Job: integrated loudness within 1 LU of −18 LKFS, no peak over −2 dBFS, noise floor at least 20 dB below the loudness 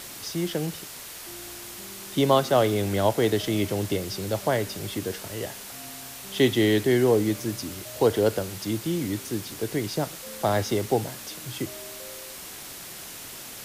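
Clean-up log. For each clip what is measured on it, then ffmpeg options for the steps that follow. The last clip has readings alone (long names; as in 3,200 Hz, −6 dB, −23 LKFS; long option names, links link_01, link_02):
background noise floor −41 dBFS; target noise floor −46 dBFS; integrated loudness −26.0 LKFS; sample peak −8.0 dBFS; target loudness −18.0 LKFS
→ -af "afftdn=noise_reduction=6:noise_floor=-41"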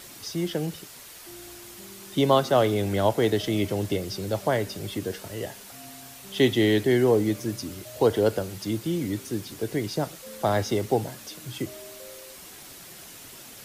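background noise floor −45 dBFS; target noise floor −46 dBFS
→ -af "afftdn=noise_reduction=6:noise_floor=-45"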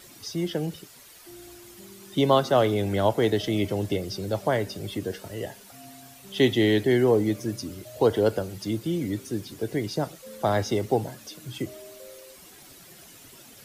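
background noise floor −50 dBFS; integrated loudness −26.0 LKFS; sample peak −8.0 dBFS; target loudness −18.0 LKFS
→ -af "volume=8dB,alimiter=limit=-2dB:level=0:latency=1"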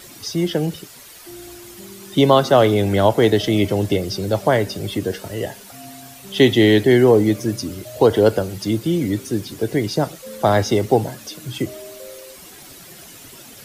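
integrated loudness −18.0 LKFS; sample peak −2.0 dBFS; background noise floor −42 dBFS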